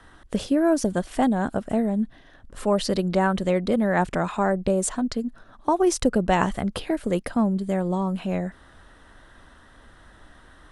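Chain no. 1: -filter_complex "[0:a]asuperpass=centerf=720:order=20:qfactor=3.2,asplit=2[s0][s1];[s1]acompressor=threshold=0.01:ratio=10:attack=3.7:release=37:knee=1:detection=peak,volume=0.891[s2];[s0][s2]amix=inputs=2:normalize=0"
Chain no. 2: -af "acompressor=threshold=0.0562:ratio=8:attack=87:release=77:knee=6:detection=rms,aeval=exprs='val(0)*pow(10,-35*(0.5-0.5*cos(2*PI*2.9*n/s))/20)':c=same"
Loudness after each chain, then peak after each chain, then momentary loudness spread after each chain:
-32.0 LUFS, -34.5 LUFS; -15.0 dBFS, -12.5 dBFS; 13 LU, 9 LU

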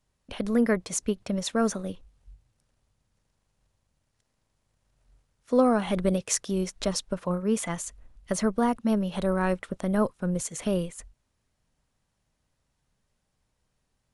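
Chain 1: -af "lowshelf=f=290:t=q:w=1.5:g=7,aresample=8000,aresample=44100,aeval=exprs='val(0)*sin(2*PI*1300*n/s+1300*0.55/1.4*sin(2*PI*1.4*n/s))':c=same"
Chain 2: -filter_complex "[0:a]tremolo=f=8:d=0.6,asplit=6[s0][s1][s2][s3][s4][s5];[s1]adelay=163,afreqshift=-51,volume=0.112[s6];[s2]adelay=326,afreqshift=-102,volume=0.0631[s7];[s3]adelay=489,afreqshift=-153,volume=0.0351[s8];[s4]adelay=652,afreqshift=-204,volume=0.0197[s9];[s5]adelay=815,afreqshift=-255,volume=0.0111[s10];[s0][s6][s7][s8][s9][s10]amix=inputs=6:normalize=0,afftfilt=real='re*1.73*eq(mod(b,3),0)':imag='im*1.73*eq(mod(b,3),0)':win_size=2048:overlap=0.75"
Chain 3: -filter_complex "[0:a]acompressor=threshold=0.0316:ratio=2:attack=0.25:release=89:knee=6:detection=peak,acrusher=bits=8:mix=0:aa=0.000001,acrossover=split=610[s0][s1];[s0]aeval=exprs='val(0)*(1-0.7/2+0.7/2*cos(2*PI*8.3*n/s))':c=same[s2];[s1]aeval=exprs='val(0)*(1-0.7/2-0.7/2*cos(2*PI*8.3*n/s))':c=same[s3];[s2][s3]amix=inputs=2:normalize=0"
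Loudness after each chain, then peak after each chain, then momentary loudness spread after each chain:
-23.0 LUFS, -32.0 LUFS, -37.0 LUFS; -8.5 dBFS, -10.0 dBFS, -17.0 dBFS; 11 LU, 10 LU, 8 LU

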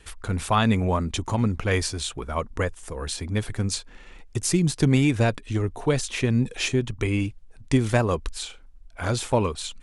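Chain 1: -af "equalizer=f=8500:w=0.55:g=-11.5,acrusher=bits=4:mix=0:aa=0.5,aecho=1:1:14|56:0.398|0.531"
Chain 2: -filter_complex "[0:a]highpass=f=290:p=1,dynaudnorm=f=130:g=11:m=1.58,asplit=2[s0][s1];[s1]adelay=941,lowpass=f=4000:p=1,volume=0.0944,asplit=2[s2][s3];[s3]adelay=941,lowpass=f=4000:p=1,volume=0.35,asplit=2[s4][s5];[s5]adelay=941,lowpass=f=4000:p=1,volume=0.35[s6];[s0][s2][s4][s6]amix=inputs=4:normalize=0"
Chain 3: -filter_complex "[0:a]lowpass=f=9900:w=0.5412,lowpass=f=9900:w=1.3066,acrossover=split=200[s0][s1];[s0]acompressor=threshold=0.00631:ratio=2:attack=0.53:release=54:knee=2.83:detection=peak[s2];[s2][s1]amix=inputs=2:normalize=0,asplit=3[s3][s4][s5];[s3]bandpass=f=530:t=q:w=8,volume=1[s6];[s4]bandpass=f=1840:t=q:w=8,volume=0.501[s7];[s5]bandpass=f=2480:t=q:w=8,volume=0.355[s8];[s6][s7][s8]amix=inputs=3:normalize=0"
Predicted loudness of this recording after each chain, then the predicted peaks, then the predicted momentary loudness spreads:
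-24.0 LUFS, -24.5 LUFS, -38.5 LUFS; -6.0 dBFS, -4.0 dBFS, -17.0 dBFS; 12 LU, 11 LU, 16 LU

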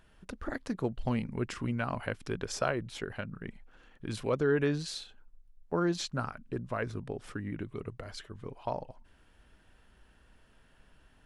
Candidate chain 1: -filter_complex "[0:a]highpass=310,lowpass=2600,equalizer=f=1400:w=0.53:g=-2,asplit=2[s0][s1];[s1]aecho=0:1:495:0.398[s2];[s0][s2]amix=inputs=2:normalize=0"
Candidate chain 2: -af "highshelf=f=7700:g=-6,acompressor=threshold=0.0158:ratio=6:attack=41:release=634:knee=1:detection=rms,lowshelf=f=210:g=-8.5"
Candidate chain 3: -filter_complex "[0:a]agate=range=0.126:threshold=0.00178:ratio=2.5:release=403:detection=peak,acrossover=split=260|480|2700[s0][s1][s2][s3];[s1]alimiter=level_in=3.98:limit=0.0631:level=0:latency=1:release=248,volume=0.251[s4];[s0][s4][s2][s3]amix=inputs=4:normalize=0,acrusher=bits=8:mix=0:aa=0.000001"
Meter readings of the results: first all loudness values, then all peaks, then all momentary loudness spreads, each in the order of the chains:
-38.5 LUFS, -45.0 LUFS, -36.5 LUFS; -16.0 dBFS, -22.0 dBFS, -16.0 dBFS; 15 LU, 8 LU, 12 LU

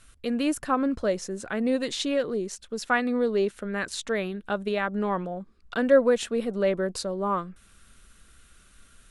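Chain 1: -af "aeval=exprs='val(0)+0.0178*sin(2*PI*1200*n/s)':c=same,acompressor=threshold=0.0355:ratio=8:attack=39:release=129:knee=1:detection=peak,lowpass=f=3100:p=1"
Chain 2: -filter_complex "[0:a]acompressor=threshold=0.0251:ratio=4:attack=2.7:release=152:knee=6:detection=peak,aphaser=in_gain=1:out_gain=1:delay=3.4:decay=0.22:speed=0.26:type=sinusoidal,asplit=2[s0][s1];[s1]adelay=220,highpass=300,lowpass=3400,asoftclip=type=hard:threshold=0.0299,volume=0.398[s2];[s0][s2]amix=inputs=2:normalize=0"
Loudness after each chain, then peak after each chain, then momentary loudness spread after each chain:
-32.0 LUFS, -35.5 LUFS; -16.0 dBFS, -21.5 dBFS; 8 LU, 8 LU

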